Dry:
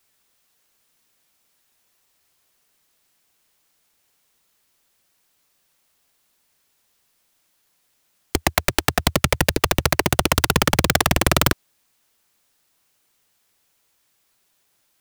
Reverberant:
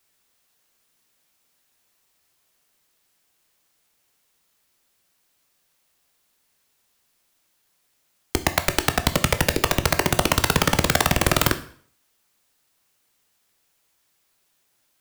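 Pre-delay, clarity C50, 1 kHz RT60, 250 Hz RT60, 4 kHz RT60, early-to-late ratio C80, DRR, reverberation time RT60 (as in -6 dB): 7 ms, 14.5 dB, 0.55 s, 0.50 s, 0.50 s, 18.5 dB, 9.0 dB, 0.55 s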